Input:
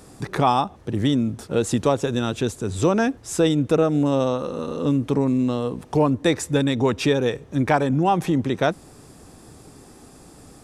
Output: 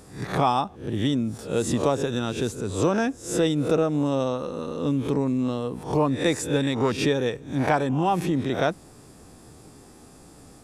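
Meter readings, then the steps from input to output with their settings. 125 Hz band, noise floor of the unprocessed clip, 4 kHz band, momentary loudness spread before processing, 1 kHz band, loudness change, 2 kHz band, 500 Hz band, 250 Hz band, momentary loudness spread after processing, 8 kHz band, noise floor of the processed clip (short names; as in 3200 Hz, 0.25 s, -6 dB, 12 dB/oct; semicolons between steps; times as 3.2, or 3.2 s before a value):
-3.5 dB, -47 dBFS, -2.0 dB, 6 LU, -2.5 dB, -3.0 dB, -2.0 dB, -3.0 dB, -3.5 dB, 6 LU, -1.5 dB, -49 dBFS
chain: spectral swells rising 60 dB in 0.40 s; gain -4 dB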